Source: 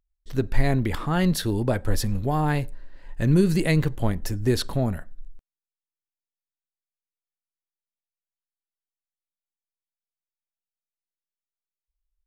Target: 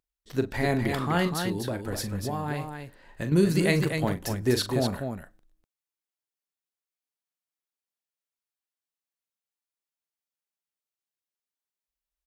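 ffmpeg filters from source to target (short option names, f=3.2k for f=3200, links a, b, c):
-filter_complex "[0:a]highpass=f=210:p=1,asettb=1/sr,asplit=3[a][b][c];[a]atrim=end=1.274[d];[b]atrim=start=1.27:end=3.32,asetpts=PTS-STARTPTS,afade=t=in:d=0.004:c=qsin,afade=t=out:st=2.046:d=0.004:c=qsin,acompressor=threshold=-29dB:ratio=6[e];[c]atrim=start=3.316[f];[d][e]acrossfade=d=0.004:c1=hsin:c2=qsin[g];[g][f]acrossfade=d=0.004:c1=qsin:c2=hsin,aecho=1:1:40.82|247.8:0.316|0.501"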